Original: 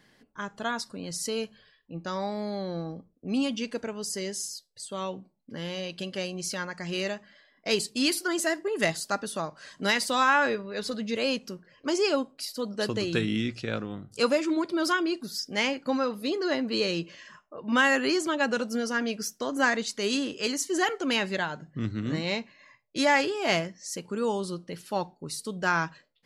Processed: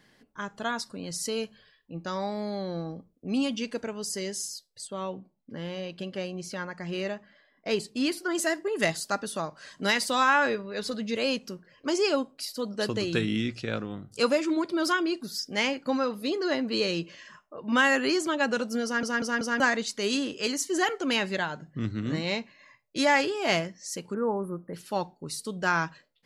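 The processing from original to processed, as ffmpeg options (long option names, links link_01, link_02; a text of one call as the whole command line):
ffmpeg -i in.wav -filter_complex "[0:a]asettb=1/sr,asplit=3[link_01][link_02][link_03];[link_01]atrim=end=4.874[link_04];[link_02]atrim=start=4.87:end=8.35,asetpts=PTS-STARTPTS,afade=type=in:duration=0.004:curve=qsin,afade=type=out:start_time=3.476:duration=0.004:curve=qsin,highshelf=frequency=3200:gain=-11[link_05];[link_03]atrim=start=8.346[link_06];[link_04][link_05]acrossfade=duration=0.004:curve1=hsin:curve2=qsin[link_07];[link_07][link_06]acrossfade=duration=0.004:curve1=qsin:curve2=hsin,asplit=3[link_08][link_09][link_10];[link_08]afade=type=out:start_time=24.13:duration=0.02[link_11];[link_09]asuperstop=centerf=4800:order=12:qfactor=0.53,afade=type=in:start_time=24.13:duration=0.02,afade=type=out:start_time=24.73:duration=0.02[link_12];[link_10]afade=type=in:start_time=24.73:duration=0.02[link_13];[link_11][link_12][link_13]amix=inputs=3:normalize=0,asplit=5[link_14][link_15][link_16][link_17][link_18];[link_14]atrim=end=19.032[link_19];[link_15]atrim=start=18.838:end=19.032[link_20];[link_16]atrim=start=18.838:end=19.032[link_21];[link_17]atrim=start=18.838:end=19.032[link_22];[link_18]atrim=start=19.598[link_23];[link_19][link_20]acrossfade=duration=0.004:curve1=hsin:curve2=hsin[link_24];[link_24][link_21]acrossfade=duration=0.004:curve1=hsin:curve2=hsin[link_25];[link_25][link_22]acrossfade=duration=0.004:curve1=hsin:curve2=hsin[link_26];[link_26][link_23]acrossfade=duration=0.004:curve1=hsin:curve2=hsin" out.wav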